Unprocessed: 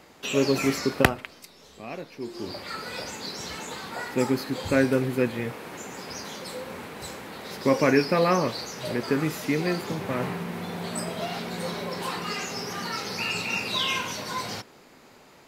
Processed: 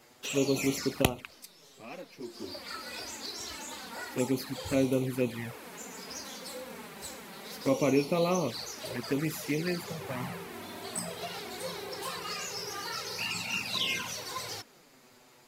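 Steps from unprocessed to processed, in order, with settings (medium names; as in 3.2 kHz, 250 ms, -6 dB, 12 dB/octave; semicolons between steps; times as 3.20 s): treble shelf 4.8 kHz +9 dB; touch-sensitive flanger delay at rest 9.2 ms, full sweep at -19.5 dBFS; trim -4.5 dB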